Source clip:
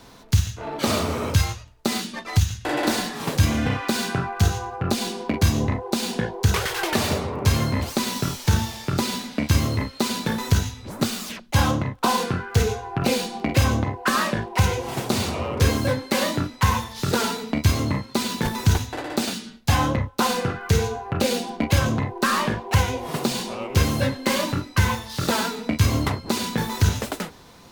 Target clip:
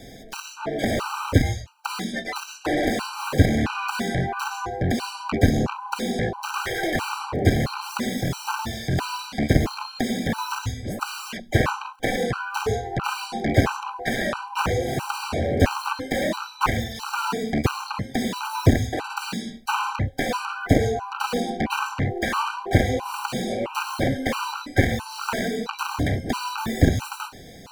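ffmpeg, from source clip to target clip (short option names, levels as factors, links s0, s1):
-filter_complex "[0:a]aeval=exprs='0.562*(cos(1*acos(clip(val(0)/0.562,-1,1)))-cos(1*PI/2))+0.251*(cos(7*acos(clip(val(0)/0.562,-1,1)))-cos(7*PI/2))':c=same,acrossover=split=2500[s0][s1];[s1]acompressor=threshold=0.0251:ratio=4:attack=1:release=60[s2];[s0][s2]amix=inputs=2:normalize=0,afftfilt=real='re*gt(sin(2*PI*1.5*pts/sr)*(1-2*mod(floor(b*sr/1024/780),2)),0)':imag='im*gt(sin(2*PI*1.5*pts/sr)*(1-2*mod(floor(b*sr/1024/780),2)),0)':win_size=1024:overlap=0.75"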